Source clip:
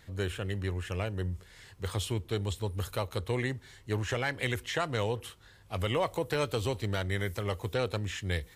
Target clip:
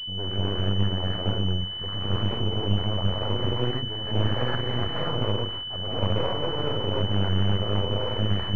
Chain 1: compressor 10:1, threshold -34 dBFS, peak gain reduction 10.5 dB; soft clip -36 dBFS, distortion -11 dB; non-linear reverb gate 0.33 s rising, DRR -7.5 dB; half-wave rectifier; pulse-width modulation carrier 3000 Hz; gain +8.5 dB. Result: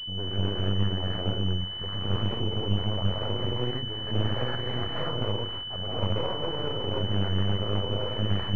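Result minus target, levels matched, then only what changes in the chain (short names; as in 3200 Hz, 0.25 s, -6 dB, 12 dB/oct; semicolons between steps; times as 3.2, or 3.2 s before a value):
compressor: peak gain reduction +10.5 dB
remove: compressor 10:1, threshold -34 dBFS, peak gain reduction 10.5 dB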